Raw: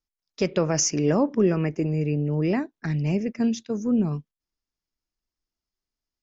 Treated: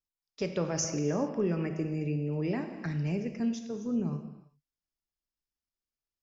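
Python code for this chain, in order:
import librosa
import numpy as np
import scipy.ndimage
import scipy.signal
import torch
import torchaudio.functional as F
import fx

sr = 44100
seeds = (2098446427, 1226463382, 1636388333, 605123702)

y = fx.rev_gated(x, sr, seeds[0], gate_ms=410, shape='falling', drr_db=6.0)
y = fx.band_squash(y, sr, depth_pct=40, at=(0.84, 3.4))
y = y * 10.0 ** (-9.0 / 20.0)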